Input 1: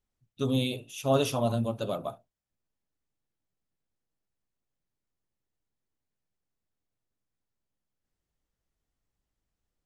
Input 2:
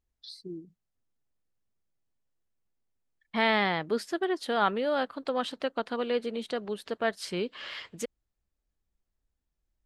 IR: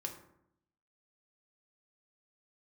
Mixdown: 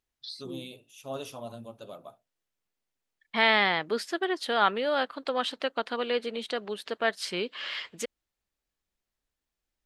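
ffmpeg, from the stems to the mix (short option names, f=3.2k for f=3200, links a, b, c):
-filter_complex "[0:a]volume=-10.5dB[a];[1:a]equalizer=f=2.9k:w=0.59:g=4.5,volume=1dB[b];[a][b]amix=inputs=2:normalize=0,lowshelf=f=180:g=-11"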